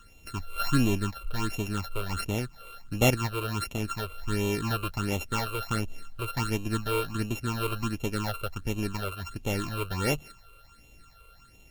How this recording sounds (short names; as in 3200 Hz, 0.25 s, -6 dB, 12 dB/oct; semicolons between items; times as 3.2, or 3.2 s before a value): a buzz of ramps at a fixed pitch in blocks of 32 samples; phasing stages 8, 1.4 Hz, lowest notch 230–1500 Hz; a quantiser's noise floor 12-bit, dither none; MP3